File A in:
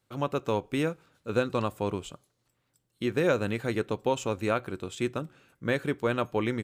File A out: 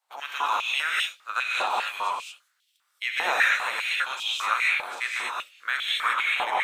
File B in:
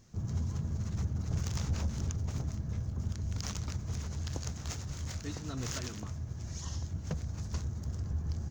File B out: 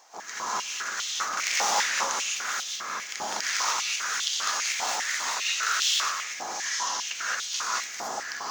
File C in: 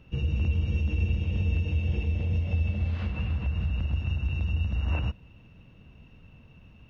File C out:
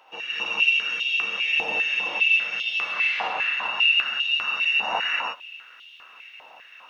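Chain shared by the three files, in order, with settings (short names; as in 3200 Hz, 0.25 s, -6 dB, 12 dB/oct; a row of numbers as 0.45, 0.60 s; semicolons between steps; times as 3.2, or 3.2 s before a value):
spectral limiter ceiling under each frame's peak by 19 dB; non-linear reverb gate 0.25 s rising, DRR -6 dB; stepped high-pass 5 Hz 820–3200 Hz; normalise peaks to -9 dBFS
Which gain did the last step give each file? -6.5, +2.5, -3.0 dB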